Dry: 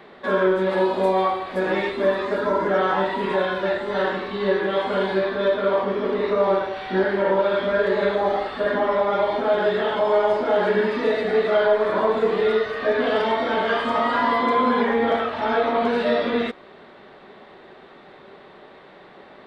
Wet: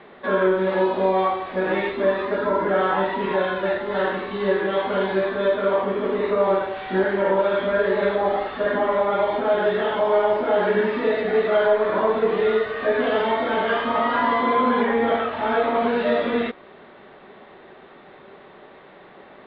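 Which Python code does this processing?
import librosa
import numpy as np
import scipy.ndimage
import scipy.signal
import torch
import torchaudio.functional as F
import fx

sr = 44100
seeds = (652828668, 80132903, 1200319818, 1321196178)

y = scipy.signal.sosfilt(scipy.signal.butter(4, 3600.0, 'lowpass', fs=sr, output='sos'), x)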